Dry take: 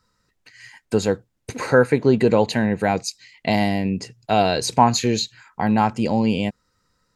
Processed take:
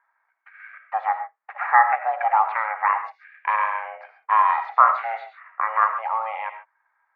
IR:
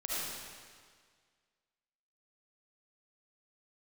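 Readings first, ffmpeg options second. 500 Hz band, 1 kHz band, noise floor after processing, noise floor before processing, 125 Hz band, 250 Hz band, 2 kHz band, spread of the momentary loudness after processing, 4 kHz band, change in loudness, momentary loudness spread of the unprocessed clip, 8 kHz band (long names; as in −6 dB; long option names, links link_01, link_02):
−15.5 dB, +4.5 dB, −72 dBFS, −71 dBFS, below −40 dB, below −40 dB, +2.0 dB, 17 LU, below −20 dB, −1.5 dB, 11 LU, below −40 dB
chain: -filter_complex "[0:a]aeval=exprs='val(0)*sin(2*PI*330*n/s)':channel_layout=same,asuperpass=centerf=1300:order=8:qfactor=1,asplit=2[link_01][link_02];[1:a]atrim=start_sample=2205,atrim=end_sample=6615[link_03];[link_02][link_03]afir=irnorm=-1:irlink=0,volume=-7dB[link_04];[link_01][link_04]amix=inputs=2:normalize=0,volume=4.5dB"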